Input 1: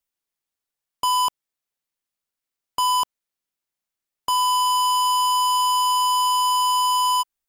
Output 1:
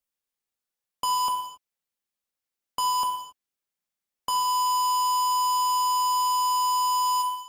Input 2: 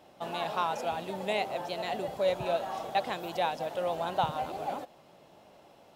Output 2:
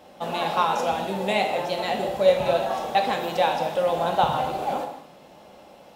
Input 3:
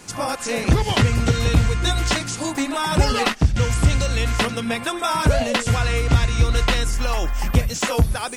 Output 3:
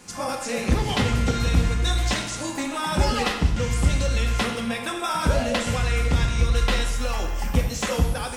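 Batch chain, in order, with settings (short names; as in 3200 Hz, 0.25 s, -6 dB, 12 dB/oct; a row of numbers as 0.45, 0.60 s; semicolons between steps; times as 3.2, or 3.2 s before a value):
non-linear reverb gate 0.3 s falling, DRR 2.5 dB; match loudness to -24 LUFS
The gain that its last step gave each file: -4.0, +6.5, -5.5 dB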